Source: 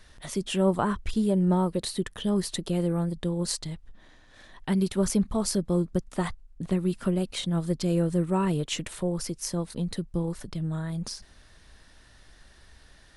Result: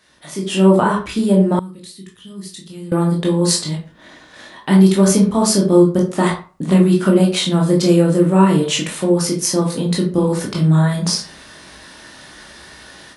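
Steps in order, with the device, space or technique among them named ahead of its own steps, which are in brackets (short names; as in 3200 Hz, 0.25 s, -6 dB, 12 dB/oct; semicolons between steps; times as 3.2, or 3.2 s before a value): far laptop microphone (reverb RT60 0.35 s, pre-delay 15 ms, DRR -1.5 dB; HPF 170 Hz 12 dB/oct; AGC gain up to 15 dB); 1.59–2.92 passive tone stack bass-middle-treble 6-0-2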